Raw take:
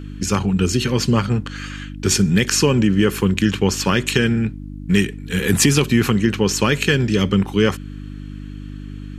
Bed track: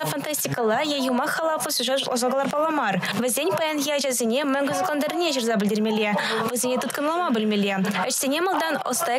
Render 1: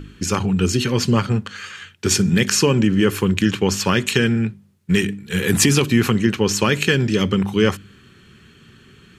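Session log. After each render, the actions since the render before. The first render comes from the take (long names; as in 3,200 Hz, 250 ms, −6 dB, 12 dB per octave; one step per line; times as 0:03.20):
hum removal 50 Hz, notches 6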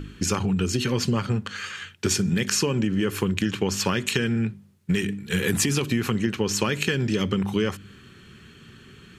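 downward compressor, threshold −20 dBFS, peak gain reduction 9.5 dB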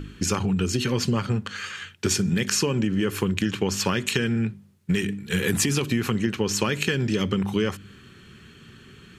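no processing that can be heard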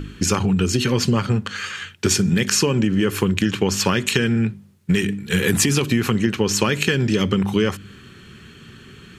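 level +5 dB
brickwall limiter −3 dBFS, peak gain reduction 1 dB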